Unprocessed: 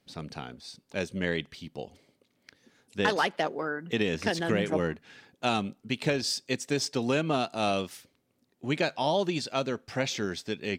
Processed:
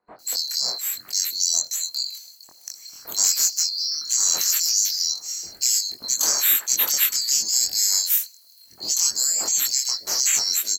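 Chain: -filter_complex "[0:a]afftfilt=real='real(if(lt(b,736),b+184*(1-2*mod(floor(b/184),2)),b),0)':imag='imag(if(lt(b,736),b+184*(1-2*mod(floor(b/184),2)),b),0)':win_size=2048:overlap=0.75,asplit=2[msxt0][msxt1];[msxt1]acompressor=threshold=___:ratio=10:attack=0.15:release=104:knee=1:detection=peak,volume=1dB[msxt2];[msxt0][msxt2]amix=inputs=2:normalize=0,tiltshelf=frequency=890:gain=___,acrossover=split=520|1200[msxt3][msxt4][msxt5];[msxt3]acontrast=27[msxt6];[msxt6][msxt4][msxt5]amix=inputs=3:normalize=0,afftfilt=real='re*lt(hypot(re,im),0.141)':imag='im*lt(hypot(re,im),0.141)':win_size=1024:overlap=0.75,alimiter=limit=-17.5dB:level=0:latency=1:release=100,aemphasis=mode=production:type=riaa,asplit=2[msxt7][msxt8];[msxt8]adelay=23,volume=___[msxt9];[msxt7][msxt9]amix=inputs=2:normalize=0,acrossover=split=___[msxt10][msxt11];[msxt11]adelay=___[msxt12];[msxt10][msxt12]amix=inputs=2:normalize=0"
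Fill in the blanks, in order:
-37dB, -3.5, -2dB, 1400, 190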